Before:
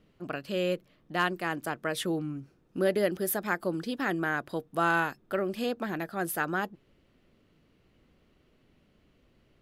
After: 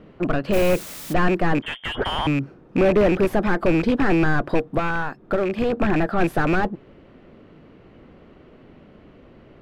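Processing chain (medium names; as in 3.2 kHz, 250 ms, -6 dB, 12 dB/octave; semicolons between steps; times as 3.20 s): rattle on loud lows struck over -38 dBFS, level -20 dBFS; 1.62–2.27 s: frequency inversion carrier 3.4 kHz; in parallel at -7 dB: bit crusher 4-bit; 4.77–5.73 s: on the sum: compression 6:1, threshold -32 dBFS, peak gain reduction 13 dB; overdrive pedal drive 28 dB, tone 1.5 kHz, clips at -12.5 dBFS; tilt EQ -3 dB/octave; 0.52–1.12 s: added noise white -37 dBFS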